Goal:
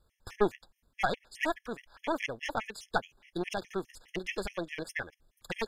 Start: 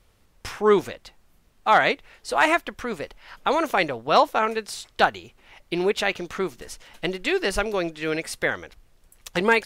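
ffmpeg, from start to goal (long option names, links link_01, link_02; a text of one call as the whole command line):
ffmpeg -i in.wav -af "atempo=1.7,aeval=exprs='0.531*(cos(1*acos(clip(val(0)/0.531,-1,1)))-cos(1*PI/2))+0.0944*(cos(4*acos(clip(val(0)/0.531,-1,1)))-cos(4*PI/2))':channel_layout=same,afftfilt=real='re*gt(sin(2*PI*4.8*pts/sr)*(1-2*mod(floor(b*sr/1024/1700),2)),0)':imag='im*gt(sin(2*PI*4.8*pts/sr)*(1-2*mod(floor(b*sr/1024/1700),2)),0)':win_size=1024:overlap=0.75,volume=-7.5dB" out.wav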